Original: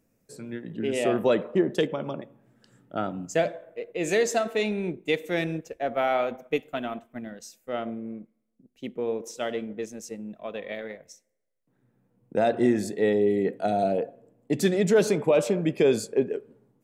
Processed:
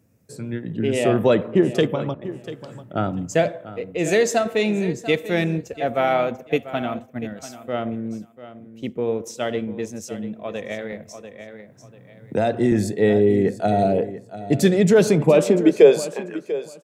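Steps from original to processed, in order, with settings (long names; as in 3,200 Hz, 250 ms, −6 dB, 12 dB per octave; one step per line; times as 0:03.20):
low-shelf EQ 78 Hz +10 dB
0:02.14–0:02.95: compressor whose output falls as the input rises −44 dBFS, ratio −1
high-pass filter sweep 93 Hz → 2,900 Hz, 0:14.99–0:16.81
repeating echo 692 ms, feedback 19%, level −14.5 dB
0:10.92–0:12.72: multiband upward and downward compressor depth 40%
level +4.5 dB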